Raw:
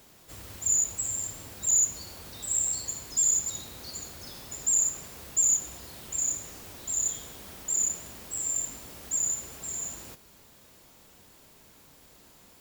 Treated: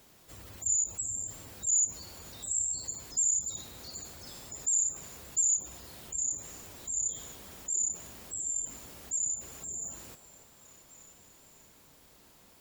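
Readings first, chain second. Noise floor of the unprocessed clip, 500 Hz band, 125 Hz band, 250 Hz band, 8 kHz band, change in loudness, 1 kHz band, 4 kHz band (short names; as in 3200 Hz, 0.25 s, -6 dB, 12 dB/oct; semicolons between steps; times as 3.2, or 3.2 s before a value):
-56 dBFS, -5.0 dB, -4.0 dB, -4.5 dB, -3.5 dB, -3.5 dB, -5.0 dB, -5.0 dB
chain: spectral gate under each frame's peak -25 dB strong; delay with a stepping band-pass 0.296 s, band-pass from 650 Hz, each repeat 0.7 oct, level -9 dB; gain -3.5 dB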